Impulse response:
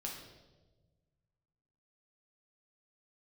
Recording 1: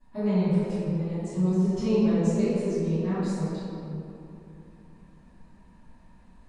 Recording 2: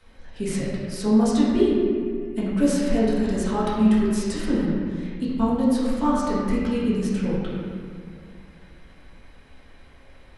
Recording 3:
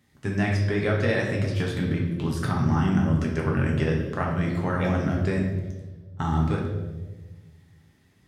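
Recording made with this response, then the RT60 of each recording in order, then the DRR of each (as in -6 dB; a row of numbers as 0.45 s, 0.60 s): 3; 3.0 s, 2.2 s, 1.3 s; -19.5 dB, -8.5 dB, -2.0 dB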